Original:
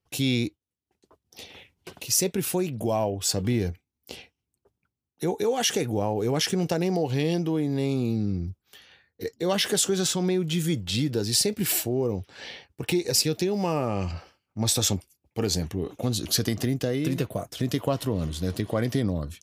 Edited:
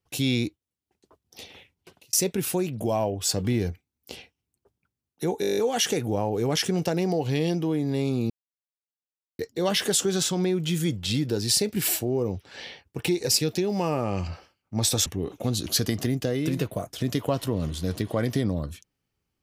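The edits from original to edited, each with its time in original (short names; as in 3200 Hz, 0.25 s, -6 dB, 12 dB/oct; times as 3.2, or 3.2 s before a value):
1.44–2.13 fade out
5.41 stutter 0.02 s, 9 plays
8.14–9.23 mute
14.9–15.65 cut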